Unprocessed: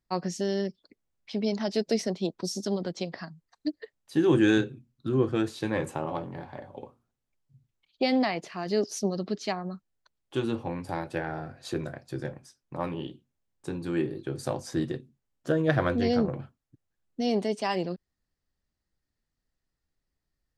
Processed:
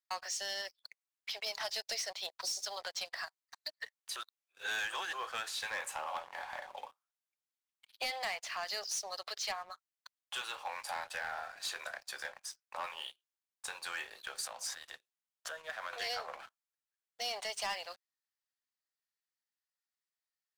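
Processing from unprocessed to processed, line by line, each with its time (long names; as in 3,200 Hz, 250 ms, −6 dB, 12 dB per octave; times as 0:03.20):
0:04.16–0:05.13: reverse
0:14.45–0:15.93: downward compressor 3 to 1, threshold −40 dBFS
whole clip: Bessel high-pass filter 1,200 Hz, order 8; downward compressor 2 to 1, threshold −50 dBFS; leveller curve on the samples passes 3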